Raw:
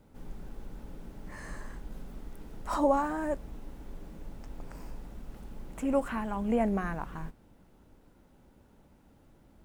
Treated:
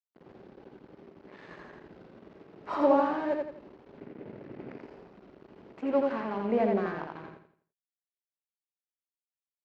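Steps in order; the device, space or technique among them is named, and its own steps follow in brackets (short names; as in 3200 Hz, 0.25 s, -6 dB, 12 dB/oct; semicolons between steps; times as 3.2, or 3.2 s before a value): blown loudspeaker (crossover distortion -43 dBFS; speaker cabinet 180–4200 Hz, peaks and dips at 390 Hz +8 dB, 600 Hz +3 dB, 3500 Hz -4 dB); 3.97–4.79 graphic EQ 125/250/500/2000/8000 Hz +8/+9/+4/+8/-6 dB; feedback echo 84 ms, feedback 35%, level -3 dB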